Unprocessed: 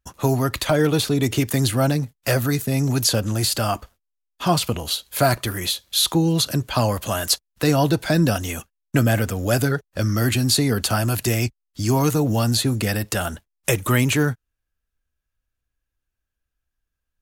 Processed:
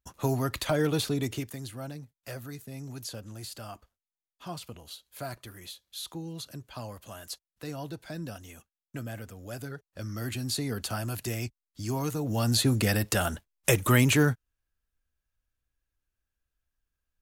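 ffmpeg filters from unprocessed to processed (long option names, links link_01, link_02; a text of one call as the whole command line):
ffmpeg -i in.wav -af "volume=9dB,afade=type=out:start_time=1.09:duration=0.48:silence=0.251189,afade=type=in:start_time=9.55:duration=1.17:silence=0.398107,afade=type=in:start_time=12.22:duration=0.46:silence=0.354813" out.wav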